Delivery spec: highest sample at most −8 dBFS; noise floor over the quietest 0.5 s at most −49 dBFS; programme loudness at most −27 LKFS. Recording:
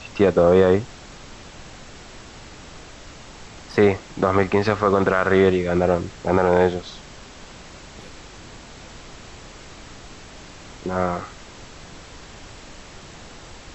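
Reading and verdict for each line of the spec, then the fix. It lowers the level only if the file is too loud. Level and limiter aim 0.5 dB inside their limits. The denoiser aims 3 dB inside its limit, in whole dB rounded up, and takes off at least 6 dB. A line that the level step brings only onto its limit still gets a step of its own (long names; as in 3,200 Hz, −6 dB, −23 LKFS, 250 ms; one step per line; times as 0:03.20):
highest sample −4.5 dBFS: out of spec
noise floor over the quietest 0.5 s −41 dBFS: out of spec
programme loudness −19.5 LKFS: out of spec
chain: broadband denoise 6 dB, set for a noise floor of −41 dBFS
level −8 dB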